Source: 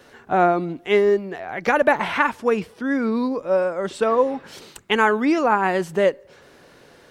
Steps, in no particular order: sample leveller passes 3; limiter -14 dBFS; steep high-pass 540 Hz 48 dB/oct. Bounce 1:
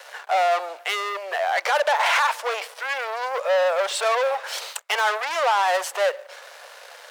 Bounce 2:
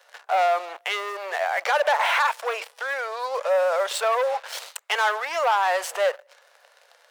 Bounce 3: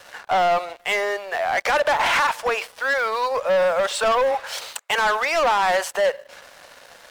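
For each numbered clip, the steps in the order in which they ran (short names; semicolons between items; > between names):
limiter > sample leveller > steep high-pass; sample leveller > limiter > steep high-pass; limiter > steep high-pass > sample leveller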